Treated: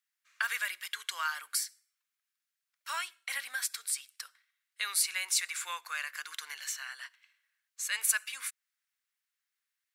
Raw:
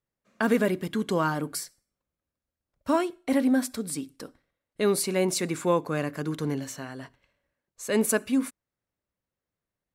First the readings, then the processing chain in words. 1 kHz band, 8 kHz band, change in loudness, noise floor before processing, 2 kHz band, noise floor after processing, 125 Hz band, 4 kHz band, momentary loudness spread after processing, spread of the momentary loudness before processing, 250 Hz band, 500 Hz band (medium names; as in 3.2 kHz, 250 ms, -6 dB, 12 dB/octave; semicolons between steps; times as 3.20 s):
-8.5 dB, +2.0 dB, -6.5 dB, under -85 dBFS, +1.0 dB, under -85 dBFS, under -40 dB, +2.0 dB, 12 LU, 15 LU, under -40 dB, -33.5 dB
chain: high-pass 1.5 kHz 24 dB/octave; in parallel at -0.5 dB: compression, threshold -43 dBFS, peak gain reduction 19 dB